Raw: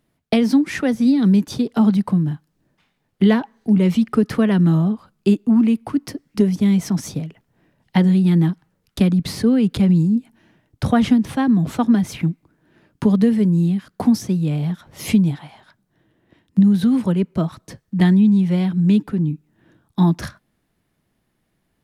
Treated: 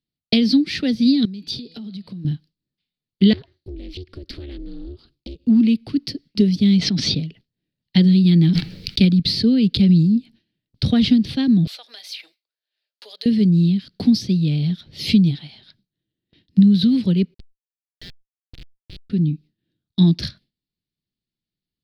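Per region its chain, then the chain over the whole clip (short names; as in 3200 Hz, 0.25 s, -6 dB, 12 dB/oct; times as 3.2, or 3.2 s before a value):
1.25–2.25 bell 110 Hz -5 dB 2 oct + de-hum 164.9 Hz, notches 31 + compressor 16:1, threshold -30 dBFS
3.33–5.47 compressor 8:1, threshold -28 dBFS + ring modulator 140 Hz + Doppler distortion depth 0.38 ms
6.79–7.2 LPF 4000 Hz + low shelf 190 Hz -6.5 dB + fast leveller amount 70%
8.32–9.05 gate -47 dBFS, range -11 dB + bell 2300 Hz +6.5 dB 0.23 oct + sustainer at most 22 dB/s
11.67–13.26 steep high-pass 570 Hz + high shelf 8500 Hz +12 dB + compressor 2:1, threshold -38 dBFS
17.34–19.1 steep high-pass 1300 Hz 48 dB/oct + Schmitt trigger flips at -29 dBFS + fast leveller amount 70%
whole clip: EQ curve 180 Hz 0 dB, 410 Hz -4 dB, 1000 Hz -20 dB, 4500 Hz +13 dB, 6800 Hz -12 dB; gate with hold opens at -43 dBFS; gain +1.5 dB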